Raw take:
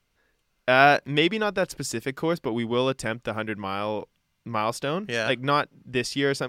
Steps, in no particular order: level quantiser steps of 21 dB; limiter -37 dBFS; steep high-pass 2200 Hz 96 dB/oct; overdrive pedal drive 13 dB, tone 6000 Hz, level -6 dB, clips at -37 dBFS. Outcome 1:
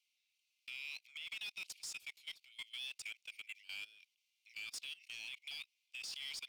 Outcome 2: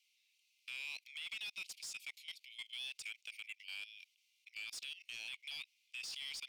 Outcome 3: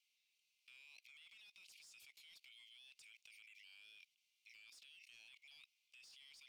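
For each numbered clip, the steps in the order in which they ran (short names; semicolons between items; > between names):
steep high-pass > overdrive pedal > level quantiser > limiter; steep high-pass > level quantiser > limiter > overdrive pedal; steep high-pass > limiter > overdrive pedal > level quantiser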